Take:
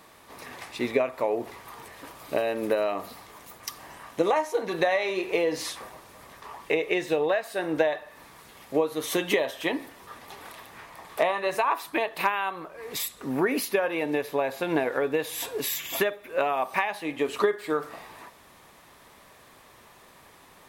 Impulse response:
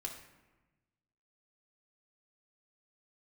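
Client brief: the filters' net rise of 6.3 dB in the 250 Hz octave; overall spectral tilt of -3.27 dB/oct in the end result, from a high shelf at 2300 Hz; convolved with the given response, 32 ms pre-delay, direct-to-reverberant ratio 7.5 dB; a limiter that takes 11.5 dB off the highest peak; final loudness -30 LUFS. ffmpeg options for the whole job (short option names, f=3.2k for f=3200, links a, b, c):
-filter_complex "[0:a]equalizer=f=250:t=o:g=8.5,highshelf=f=2.3k:g=8,alimiter=limit=-16.5dB:level=0:latency=1,asplit=2[a][b];[1:a]atrim=start_sample=2205,adelay=32[c];[b][c]afir=irnorm=-1:irlink=0,volume=-6.5dB[d];[a][d]amix=inputs=2:normalize=0,volume=-3dB"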